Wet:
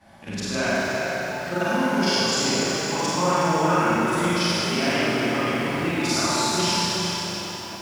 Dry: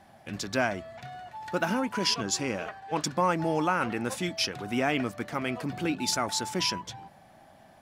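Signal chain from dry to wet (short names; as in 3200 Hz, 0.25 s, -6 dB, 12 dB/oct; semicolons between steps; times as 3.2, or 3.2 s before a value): short-time reversal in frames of 0.114 s; LPF 11000 Hz 12 dB/oct; bell 550 Hz -2.5 dB 0.3 oct; notch 750 Hz, Q 12; on a send: tape echo 0.244 s, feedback 80%, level -14.5 dB, low-pass 5000 Hz; on the sum: Schroeder reverb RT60 2.6 s, combs from 31 ms, DRR -7.5 dB; in parallel at -0.5 dB: compressor, threshold -34 dBFS, peak gain reduction 14.5 dB; on the sum: lo-fi delay 0.37 s, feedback 35%, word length 7-bit, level -7.5 dB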